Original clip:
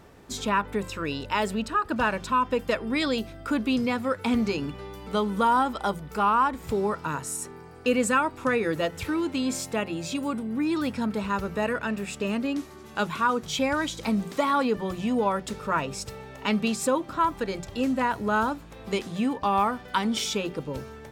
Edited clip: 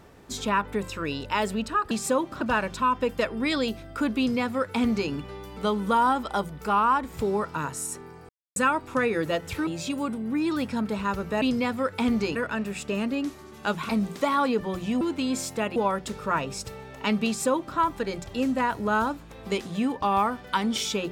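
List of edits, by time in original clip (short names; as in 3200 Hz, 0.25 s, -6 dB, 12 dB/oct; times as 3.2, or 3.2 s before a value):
3.68–4.61 copy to 11.67
7.79–8.06 mute
9.17–9.92 move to 15.17
13.21–14.05 cut
16.68–17.18 copy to 1.91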